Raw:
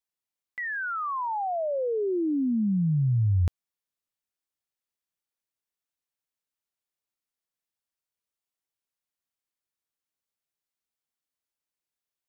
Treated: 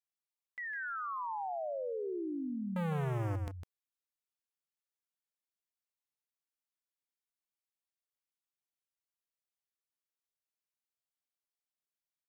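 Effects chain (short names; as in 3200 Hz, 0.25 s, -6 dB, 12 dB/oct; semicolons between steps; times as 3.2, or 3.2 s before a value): 2.76–3.36 sample leveller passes 5; low shelf 320 Hz -7.5 dB; echo 0.155 s -8 dB; gain -8.5 dB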